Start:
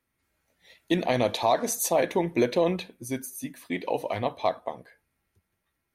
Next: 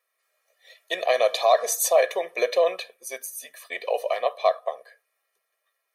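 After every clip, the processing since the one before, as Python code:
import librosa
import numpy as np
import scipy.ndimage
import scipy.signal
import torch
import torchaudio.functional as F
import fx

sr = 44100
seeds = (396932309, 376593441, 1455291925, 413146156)

y = scipy.signal.sosfilt(scipy.signal.butter(4, 480.0, 'highpass', fs=sr, output='sos'), x)
y = y + 0.95 * np.pad(y, (int(1.7 * sr / 1000.0), 0))[:len(y)]
y = y * librosa.db_to_amplitude(1.0)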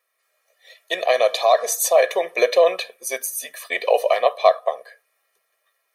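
y = fx.rider(x, sr, range_db=3, speed_s=0.5)
y = y * librosa.db_to_amplitude(5.5)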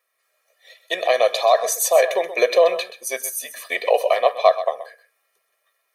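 y = x + 10.0 ** (-13.0 / 20.0) * np.pad(x, (int(128 * sr / 1000.0), 0))[:len(x)]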